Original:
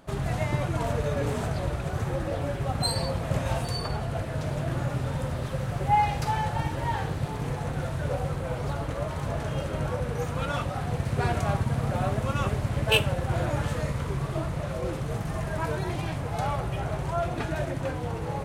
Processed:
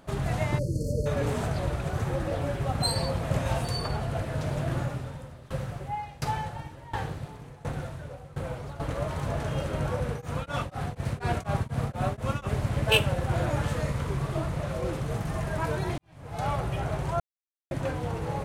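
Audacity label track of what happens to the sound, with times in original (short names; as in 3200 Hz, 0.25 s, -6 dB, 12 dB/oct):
0.590000	1.060000	spectral delete 610–4200 Hz
4.790000	8.800000	dB-ramp tremolo decaying 1.4 Hz, depth 19 dB
10.100000	12.500000	beating tremolo nulls at 4.1 Hz
15.980000	16.480000	fade in quadratic
17.200000	17.710000	mute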